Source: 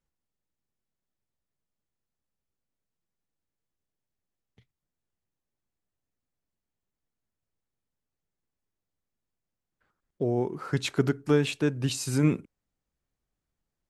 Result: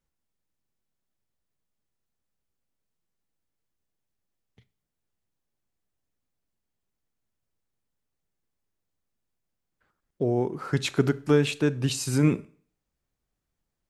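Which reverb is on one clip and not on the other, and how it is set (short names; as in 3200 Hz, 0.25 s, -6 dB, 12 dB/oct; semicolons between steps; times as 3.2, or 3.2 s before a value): Schroeder reverb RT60 0.49 s, combs from 28 ms, DRR 18.5 dB; gain +2 dB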